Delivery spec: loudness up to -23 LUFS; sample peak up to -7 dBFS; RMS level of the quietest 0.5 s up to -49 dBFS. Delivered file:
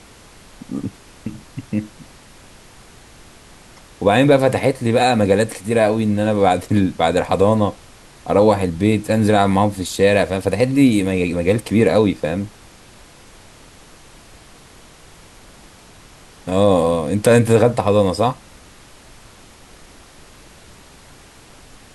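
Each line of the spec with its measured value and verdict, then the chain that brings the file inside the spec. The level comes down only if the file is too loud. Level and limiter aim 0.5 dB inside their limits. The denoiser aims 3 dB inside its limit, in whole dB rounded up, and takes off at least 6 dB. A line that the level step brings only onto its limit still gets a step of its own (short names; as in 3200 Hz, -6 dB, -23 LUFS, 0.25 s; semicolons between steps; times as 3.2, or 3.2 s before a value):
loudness -17.0 LUFS: fail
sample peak -2.0 dBFS: fail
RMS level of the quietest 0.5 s -44 dBFS: fail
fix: gain -6.5 dB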